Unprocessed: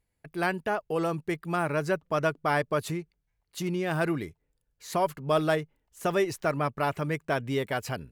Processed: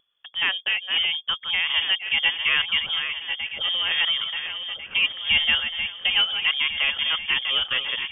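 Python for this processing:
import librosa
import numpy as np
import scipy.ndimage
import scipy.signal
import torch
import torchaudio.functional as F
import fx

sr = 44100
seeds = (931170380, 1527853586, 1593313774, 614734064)

y = fx.reverse_delay_fb(x, sr, ms=698, feedback_pct=64, wet_db=-8.0)
y = fx.freq_invert(y, sr, carrier_hz=3400)
y = fx.vibrato(y, sr, rate_hz=0.79, depth_cents=6.5)
y = y * librosa.db_to_amplitude(4.0)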